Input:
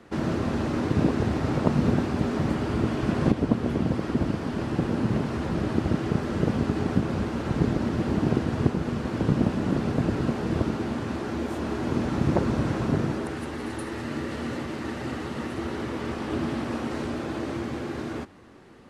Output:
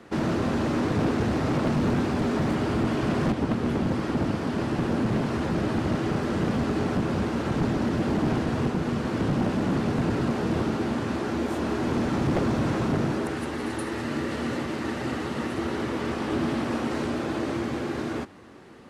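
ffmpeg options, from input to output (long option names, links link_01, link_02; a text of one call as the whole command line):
ffmpeg -i in.wav -af "lowshelf=frequency=68:gain=-8.5,asoftclip=type=hard:threshold=-23dB,volume=3dB" out.wav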